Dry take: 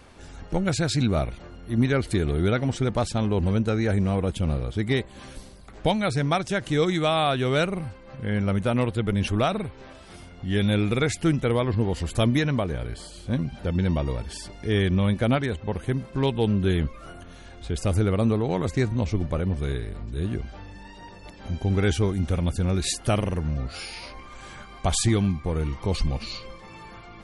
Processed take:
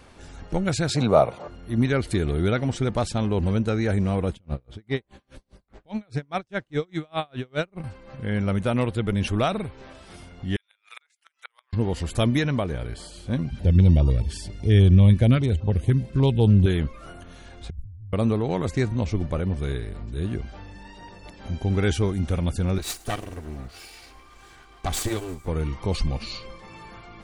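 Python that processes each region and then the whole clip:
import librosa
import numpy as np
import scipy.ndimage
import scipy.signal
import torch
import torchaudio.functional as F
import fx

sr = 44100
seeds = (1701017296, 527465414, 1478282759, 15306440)

y = fx.chain(x, sr, fx.highpass(hz=100.0, slope=24),
    fx.band_shelf(hz=730.0, db=11.5, octaves=1.7), at=(0.89, 1.48))
y = fx.chain(y, sr, fx.high_shelf(hz=5600.0, db=-11.0),
    fx.tremolo_db(hz=4.9, depth_db=39), at=(4.33, 7.84))
y = fx.chain(y, sr, fx.highpass(hz=1100.0, slope=24),
    fx.level_steps(step_db=11),
    fx.gate_flip(shuts_db=-28.0, range_db=-34), at=(10.56, 11.73))
y = fx.chain(y, sr, fx.peak_eq(hz=83.0, db=11.0, octaves=1.9),
    fx.filter_held_notch(hz=10.0, low_hz=700.0, high_hz=1900.0), at=(13.5, 16.66))
y = fx.chain(y, sr, fx.cheby2_bandstop(low_hz=340.0, high_hz=9600.0, order=4, stop_db=60),
    fx.over_compress(threshold_db=-38.0, ratio=-1.0), at=(17.7, 18.13))
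y = fx.chain(y, sr, fx.lower_of_two(delay_ms=2.6),
    fx.echo_wet_highpass(ms=106, feedback_pct=70, hz=5300.0, wet_db=-16),
    fx.upward_expand(threshold_db=-35.0, expansion=1.5), at=(22.78, 25.48))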